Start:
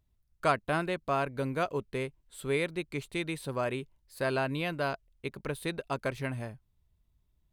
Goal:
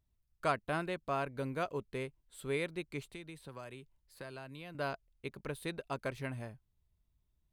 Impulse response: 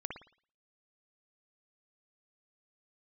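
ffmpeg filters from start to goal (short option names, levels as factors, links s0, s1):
-filter_complex "[0:a]asettb=1/sr,asplit=3[s0][s1][s2];[s0]atrim=end=3.064[s3];[s1]atrim=start=3.06:end=4.75,asetpts=PTS-STARTPTS,afade=t=in:d=0.004:c=qsin,afade=t=out:st=1.686:d=0.004:c=qsin,acrossover=split=110|1000|3900[s4][s5][s6][s7];[s4]acompressor=threshold=0.002:ratio=4[s8];[s5]acompressor=threshold=0.00631:ratio=4[s9];[s6]acompressor=threshold=0.00398:ratio=4[s10];[s7]acompressor=threshold=0.00158:ratio=4[s11];[s8][s9][s10][s11]amix=inputs=4:normalize=0[s12];[s2]atrim=start=4.746[s13];[s3][s12]acrossfade=d=0.004:c1=hsin:c2=qsin[s14];[s14][s13]acrossfade=d=0.004:c1=qsin:c2=hsin,volume=0.531"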